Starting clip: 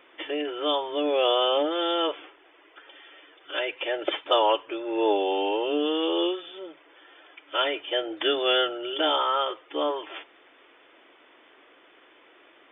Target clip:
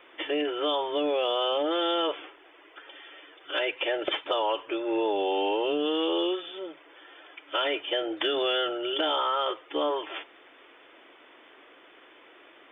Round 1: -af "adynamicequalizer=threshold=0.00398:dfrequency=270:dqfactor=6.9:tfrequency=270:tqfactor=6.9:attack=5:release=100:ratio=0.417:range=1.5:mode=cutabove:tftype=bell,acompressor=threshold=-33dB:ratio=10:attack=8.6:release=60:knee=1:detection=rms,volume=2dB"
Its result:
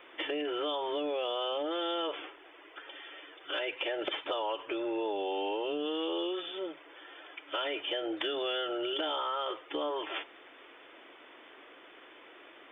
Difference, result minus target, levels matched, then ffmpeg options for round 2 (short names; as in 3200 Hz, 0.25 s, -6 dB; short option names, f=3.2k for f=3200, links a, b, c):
compressor: peak gain reduction +6.5 dB
-af "adynamicequalizer=threshold=0.00398:dfrequency=270:dqfactor=6.9:tfrequency=270:tqfactor=6.9:attack=5:release=100:ratio=0.417:range=1.5:mode=cutabove:tftype=bell,acompressor=threshold=-25.5dB:ratio=10:attack=8.6:release=60:knee=1:detection=rms,volume=2dB"